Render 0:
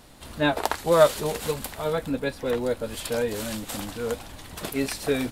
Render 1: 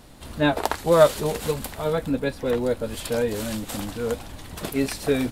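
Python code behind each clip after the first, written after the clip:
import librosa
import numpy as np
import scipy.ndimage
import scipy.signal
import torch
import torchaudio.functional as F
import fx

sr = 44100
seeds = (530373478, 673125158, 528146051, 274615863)

y = fx.low_shelf(x, sr, hz=480.0, db=4.5)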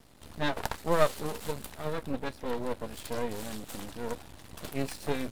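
y = scipy.signal.sosfilt(scipy.signal.butter(2, 49.0, 'highpass', fs=sr, output='sos'), x)
y = np.maximum(y, 0.0)
y = fx.quant_float(y, sr, bits=6)
y = y * librosa.db_to_amplitude(-5.5)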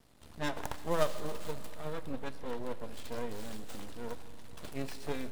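y = fx.tracing_dist(x, sr, depth_ms=0.31)
y = fx.rev_schroeder(y, sr, rt60_s=3.1, comb_ms=30, drr_db=12.5)
y = fx.end_taper(y, sr, db_per_s=170.0)
y = y * librosa.db_to_amplitude(-6.0)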